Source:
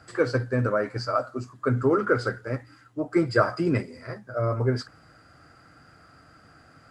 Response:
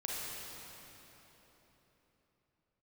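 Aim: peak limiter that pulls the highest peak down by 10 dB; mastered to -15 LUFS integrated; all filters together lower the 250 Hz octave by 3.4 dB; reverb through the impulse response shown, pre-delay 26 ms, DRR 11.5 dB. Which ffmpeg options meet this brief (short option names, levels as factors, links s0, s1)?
-filter_complex "[0:a]equalizer=f=250:t=o:g=-5,alimiter=limit=0.119:level=0:latency=1,asplit=2[s0][s1];[1:a]atrim=start_sample=2205,adelay=26[s2];[s1][s2]afir=irnorm=-1:irlink=0,volume=0.188[s3];[s0][s3]amix=inputs=2:normalize=0,volume=5.62"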